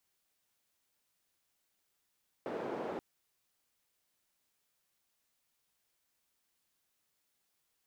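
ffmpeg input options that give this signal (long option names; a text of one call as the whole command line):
ffmpeg -f lavfi -i "anoisesrc=color=white:duration=0.53:sample_rate=44100:seed=1,highpass=frequency=340,lowpass=frequency=470,volume=-14.3dB" out.wav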